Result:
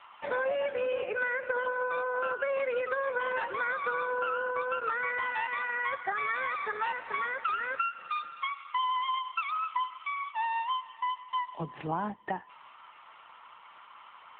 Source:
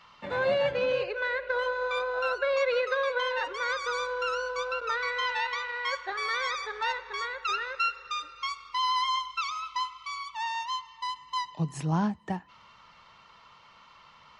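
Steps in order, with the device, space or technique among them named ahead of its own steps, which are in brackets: voicemail (BPF 390–3100 Hz; compressor 10:1, threshold -32 dBFS, peak gain reduction 9.5 dB; gain +5.5 dB; AMR-NB 7.95 kbps 8000 Hz)

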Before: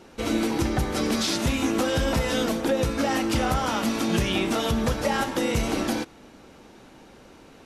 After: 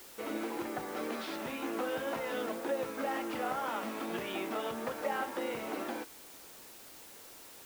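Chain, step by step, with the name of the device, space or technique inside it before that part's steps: wax cylinder (BPF 370–2200 Hz; wow and flutter; white noise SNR 15 dB); gain -8 dB

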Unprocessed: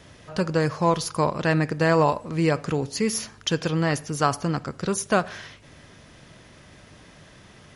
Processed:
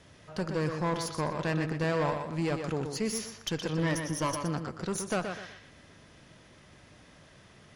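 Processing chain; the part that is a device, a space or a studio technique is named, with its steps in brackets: 3.77–4.39 ripple EQ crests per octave 1.2, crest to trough 13 dB; rockabilly slapback (tube stage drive 18 dB, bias 0.45; tape echo 0.122 s, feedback 34%, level -5 dB, low-pass 5400 Hz); gain -5.5 dB

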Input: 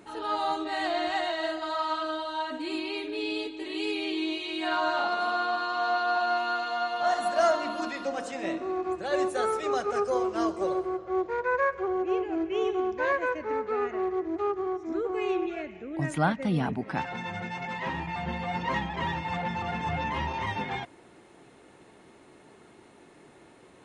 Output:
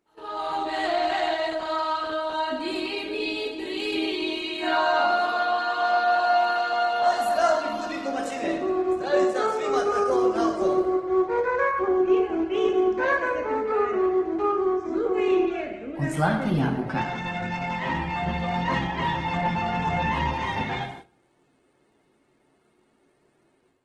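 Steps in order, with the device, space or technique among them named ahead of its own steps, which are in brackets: 9.02–9.73 elliptic band-pass 120–7200 Hz; speakerphone in a meeting room (reverb RT60 0.85 s, pre-delay 9 ms, DRR 2.5 dB; AGC gain up to 9.5 dB; gate -34 dBFS, range -16 dB; gain -7 dB; Opus 16 kbps 48000 Hz)

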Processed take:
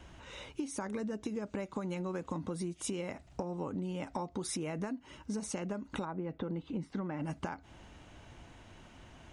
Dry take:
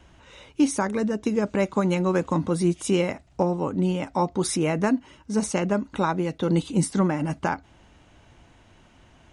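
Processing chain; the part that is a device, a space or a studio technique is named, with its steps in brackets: serial compression, peaks first (compressor, threshold -28 dBFS, peak gain reduction 12.5 dB; compressor 2.5:1, threshold -37 dBFS, peak gain reduction 8.5 dB); 6.04–7.21 LPF 1400 Hz -> 3300 Hz 12 dB/oct

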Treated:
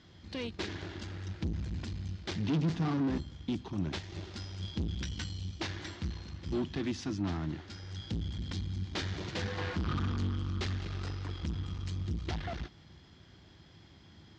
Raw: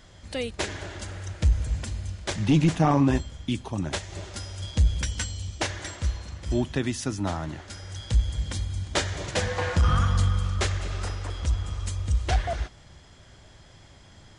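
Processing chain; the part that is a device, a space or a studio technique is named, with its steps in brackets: guitar amplifier (tube stage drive 28 dB, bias 0.6; tone controls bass +10 dB, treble +9 dB; speaker cabinet 110–4500 Hz, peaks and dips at 120 Hz -8 dB, 330 Hz +6 dB, 590 Hz -6 dB); 2.54–3.59 dynamic EQ 2700 Hz, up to -4 dB, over -51 dBFS, Q 1.4; gain -4.5 dB

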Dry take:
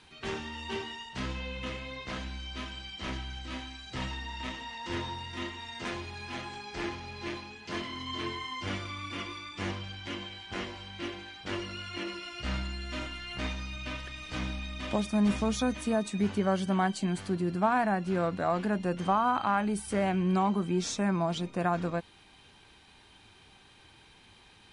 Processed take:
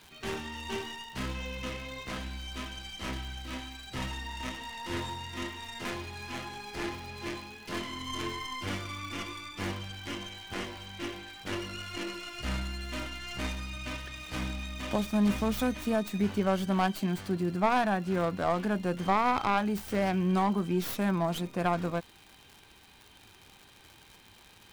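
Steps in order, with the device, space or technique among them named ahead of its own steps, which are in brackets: record under a worn stylus (tracing distortion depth 0.19 ms; crackle 130/s -40 dBFS; white noise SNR 39 dB)

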